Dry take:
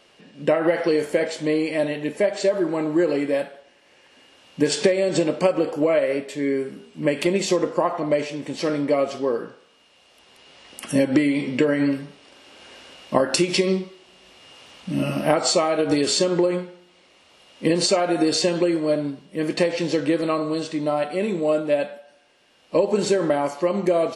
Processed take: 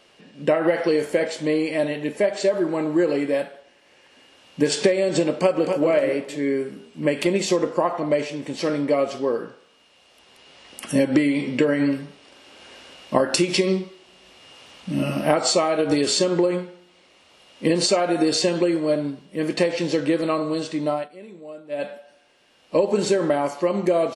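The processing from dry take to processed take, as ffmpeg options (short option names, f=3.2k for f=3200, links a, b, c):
-filter_complex "[0:a]asplit=2[a][b];[b]afade=t=in:st=5.37:d=0.01,afade=t=out:st=5.83:d=0.01,aecho=0:1:260|520|780|1040:0.501187|0.150356|0.0451069|0.0135321[c];[a][c]amix=inputs=2:normalize=0,asplit=3[d][e][f];[d]atrim=end=21.09,asetpts=PTS-STARTPTS,afade=t=out:st=20.91:d=0.18:silence=0.133352[g];[e]atrim=start=21.09:end=21.69,asetpts=PTS-STARTPTS,volume=-17.5dB[h];[f]atrim=start=21.69,asetpts=PTS-STARTPTS,afade=t=in:d=0.18:silence=0.133352[i];[g][h][i]concat=n=3:v=0:a=1"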